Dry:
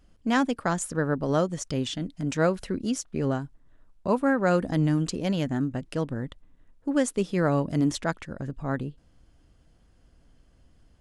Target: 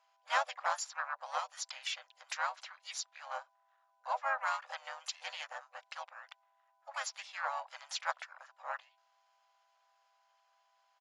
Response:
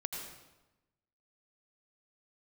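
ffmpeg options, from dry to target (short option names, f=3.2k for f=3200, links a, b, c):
-filter_complex "[0:a]afftfilt=real='re*between(b*sr/4096,750,7500)':imag='im*between(b*sr/4096,750,7500)':win_size=4096:overlap=0.75,aeval=exprs='val(0)+0.000398*sin(2*PI*1000*n/s)':c=same,asplit=4[a][b][c][d];[b]asetrate=29433,aresample=44100,atempo=1.49831,volume=-8dB[e];[c]asetrate=35002,aresample=44100,atempo=1.25992,volume=-4dB[f];[d]asetrate=66075,aresample=44100,atempo=0.66742,volume=-16dB[g];[a][e][f][g]amix=inputs=4:normalize=0,volume=-5.5dB"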